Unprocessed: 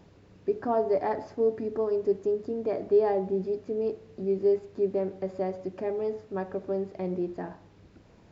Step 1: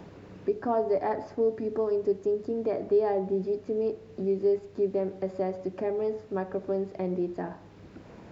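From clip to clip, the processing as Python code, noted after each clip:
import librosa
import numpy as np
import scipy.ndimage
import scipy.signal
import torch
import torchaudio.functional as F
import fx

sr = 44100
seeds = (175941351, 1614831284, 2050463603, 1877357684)

y = fx.band_squash(x, sr, depth_pct=40)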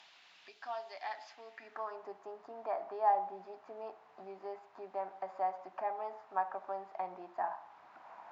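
y = fx.low_shelf_res(x, sr, hz=590.0, db=-6.5, q=3.0)
y = fx.filter_sweep_bandpass(y, sr, from_hz=3400.0, to_hz=980.0, start_s=1.27, end_s=2.06, q=1.8)
y = fx.tilt_eq(y, sr, slope=2.0)
y = F.gain(torch.from_numpy(y), 3.0).numpy()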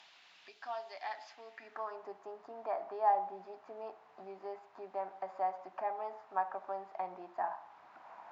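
y = x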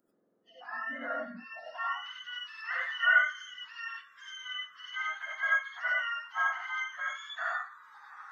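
y = fx.octave_mirror(x, sr, pivot_hz=1100.0)
y = fx.rev_gated(y, sr, seeds[0], gate_ms=120, shape='rising', drr_db=-3.5)
y = fx.noise_reduce_blind(y, sr, reduce_db=24)
y = F.gain(torch.from_numpy(y), 3.5).numpy()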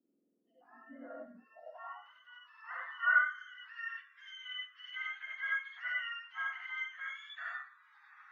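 y = fx.filter_sweep_bandpass(x, sr, from_hz=270.0, to_hz=2400.0, start_s=0.59, end_s=4.36, q=2.6)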